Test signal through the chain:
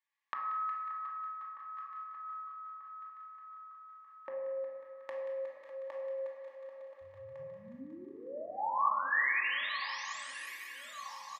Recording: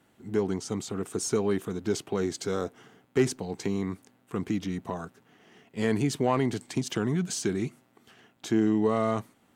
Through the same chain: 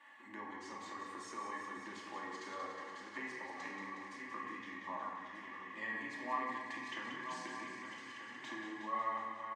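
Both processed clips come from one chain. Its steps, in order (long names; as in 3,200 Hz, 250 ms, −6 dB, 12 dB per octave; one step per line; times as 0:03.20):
feedback delay that plays each chunk backwards 619 ms, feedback 58%, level −13.5 dB
comb filter 3.6 ms, depth 65%
downward compressor 2.5 to 1, threshold −38 dBFS
pair of resonant band-passes 1,400 Hz, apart 0.74 octaves
delay with a high-pass on its return 182 ms, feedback 72%, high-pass 1,400 Hz, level −7 dB
rectangular room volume 930 cubic metres, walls mixed, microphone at 2.6 metres
one half of a high-frequency compander encoder only
level +4.5 dB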